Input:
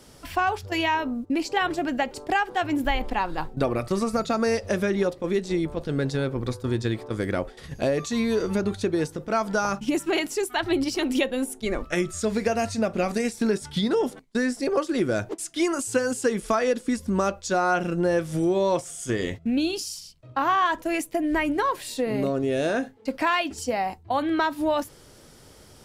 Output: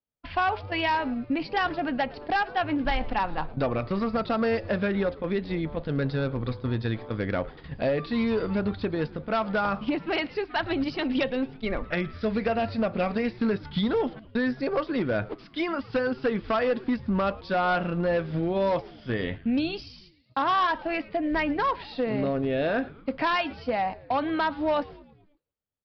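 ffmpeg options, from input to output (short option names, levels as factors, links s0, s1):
-filter_complex "[0:a]agate=range=0.00631:threshold=0.00794:ratio=16:detection=peak,lowpass=3500,equalizer=f=360:w=4.2:g=-7.5,aresample=11025,asoftclip=type=hard:threshold=0.106,aresample=44100,asplit=6[s0][s1][s2][s3][s4][s5];[s1]adelay=110,afreqshift=-120,volume=0.0891[s6];[s2]adelay=220,afreqshift=-240,volume=0.0519[s7];[s3]adelay=330,afreqshift=-360,volume=0.0299[s8];[s4]adelay=440,afreqshift=-480,volume=0.0174[s9];[s5]adelay=550,afreqshift=-600,volume=0.0101[s10];[s0][s6][s7][s8][s9][s10]amix=inputs=6:normalize=0"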